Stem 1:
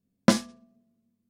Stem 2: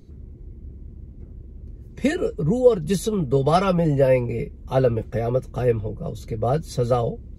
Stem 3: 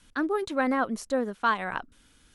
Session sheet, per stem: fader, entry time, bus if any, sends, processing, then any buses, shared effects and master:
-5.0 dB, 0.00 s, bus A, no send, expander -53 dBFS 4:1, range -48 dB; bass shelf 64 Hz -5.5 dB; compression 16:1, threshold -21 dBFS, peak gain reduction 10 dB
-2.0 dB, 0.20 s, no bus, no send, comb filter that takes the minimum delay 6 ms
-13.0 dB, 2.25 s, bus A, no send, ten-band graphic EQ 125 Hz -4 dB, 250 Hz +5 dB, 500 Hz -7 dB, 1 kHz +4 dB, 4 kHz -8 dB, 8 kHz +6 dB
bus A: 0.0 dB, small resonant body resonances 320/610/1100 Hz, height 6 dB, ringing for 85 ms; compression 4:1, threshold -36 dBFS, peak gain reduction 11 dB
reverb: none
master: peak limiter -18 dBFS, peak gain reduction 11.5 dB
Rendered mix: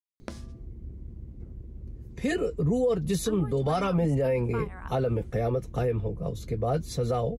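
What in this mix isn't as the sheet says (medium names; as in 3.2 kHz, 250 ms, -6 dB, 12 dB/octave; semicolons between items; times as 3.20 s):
stem 2: missing comb filter that takes the minimum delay 6 ms; stem 3: entry 2.25 s -> 3.10 s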